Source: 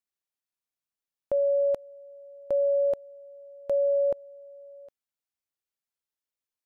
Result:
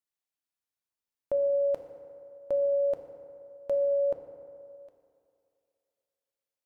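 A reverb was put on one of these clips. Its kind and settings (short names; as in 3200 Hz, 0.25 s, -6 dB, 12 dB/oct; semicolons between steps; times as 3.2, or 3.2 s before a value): FDN reverb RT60 2.6 s, low-frequency decay 0.85×, high-frequency decay 0.45×, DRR 5 dB; gain -2.5 dB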